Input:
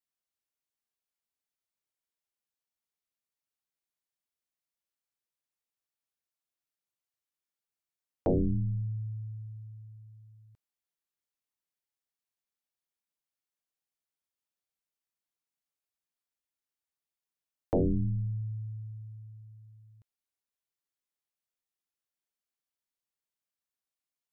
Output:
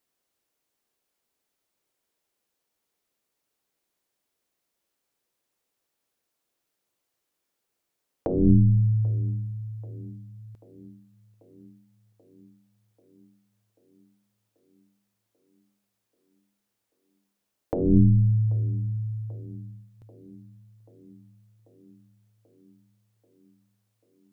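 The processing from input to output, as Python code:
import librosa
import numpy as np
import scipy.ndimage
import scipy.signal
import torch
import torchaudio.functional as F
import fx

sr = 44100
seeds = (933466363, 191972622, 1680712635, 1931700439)

p1 = fx.peak_eq(x, sr, hz=390.0, db=8.0, octaves=1.9)
p2 = fx.over_compress(p1, sr, threshold_db=-25.0, ratio=-0.5)
p3 = p2 + fx.echo_tape(p2, sr, ms=787, feedback_pct=80, wet_db=-20.0, lp_hz=1100.0, drive_db=7.0, wow_cents=21, dry=0)
y = p3 * 10.0 ** (8.5 / 20.0)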